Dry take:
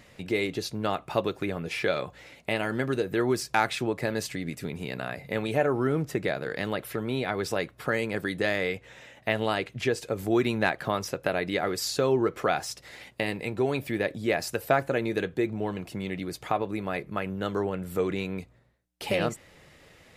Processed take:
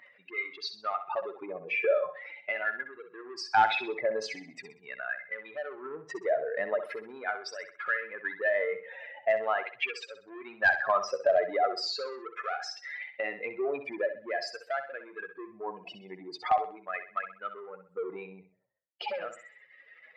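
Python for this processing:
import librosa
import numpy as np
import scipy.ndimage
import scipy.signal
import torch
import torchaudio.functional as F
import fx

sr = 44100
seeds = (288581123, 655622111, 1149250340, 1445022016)

p1 = fx.spec_expand(x, sr, power=2.5)
p2 = 10.0 ** (-27.0 / 20.0) * np.tanh(p1 / 10.0 ** (-27.0 / 20.0))
p3 = p1 + F.gain(torch.from_numpy(p2), -10.5).numpy()
p4 = fx.filter_lfo_highpass(p3, sr, shape='sine', hz=0.42, low_hz=730.0, high_hz=1700.0, q=1.5)
p5 = fx.clip_asym(p4, sr, top_db=-19.0, bottom_db=-16.5)
p6 = scipy.ndimage.gaussian_filter1d(p5, 1.8, mode='constant')
p7 = p6 + fx.echo_feedback(p6, sr, ms=64, feedback_pct=35, wet_db=-10, dry=0)
y = F.gain(torch.from_numpy(p7), 2.5).numpy()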